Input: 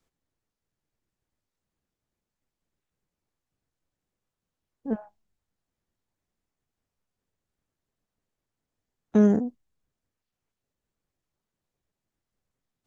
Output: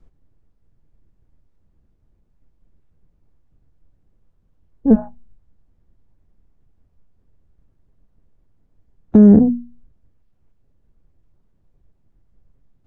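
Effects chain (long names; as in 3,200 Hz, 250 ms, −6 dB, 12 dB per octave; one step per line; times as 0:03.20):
spectral tilt −4.5 dB per octave
mains-hum notches 60/120/180/240 Hz
boost into a limiter +11 dB
level −1 dB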